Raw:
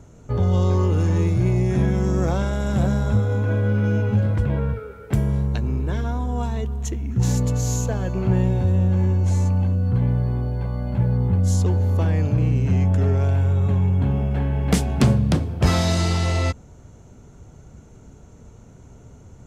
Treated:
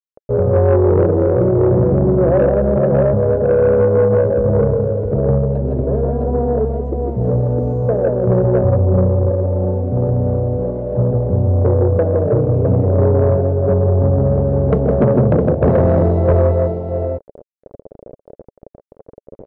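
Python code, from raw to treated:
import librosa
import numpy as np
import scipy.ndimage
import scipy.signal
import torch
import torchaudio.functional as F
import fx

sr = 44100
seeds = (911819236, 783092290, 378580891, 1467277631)

p1 = x * (1.0 - 0.32 / 2.0 + 0.32 / 2.0 * np.cos(2.0 * np.pi * 3.0 * (np.arange(len(x)) / sr)))
p2 = np.sign(p1) * np.maximum(np.abs(p1) - 10.0 ** (-35.5 / 20.0), 0.0)
p3 = p1 + (p2 * 10.0 ** (-6.5 / 20.0))
p4 = fx.peak_eq(p3, sr, hz=62.0, db=-8.0, octaves=0.21)
p5 = fx.echo_multitap(p4, sr, ms=(128, 153, 161, 375, 659), db=(-11.0, -9.0, -3.0, -18.5, -4.0))
p6 = fx.quant_dither(p5, sr, seeds[0], bits=6, dither='none')
p7 = fx.lowpass_res(p6, sr, hz=570.0, q=4.9)
p8 = fx.peak_eq(p7, sr, hz=430.0, db=6.0, octaves=0.48)
y = 10.0 ** (-6.0 / 20.0) * np.tanh(p8 / 10.0 ** (-6.0 / 20.0))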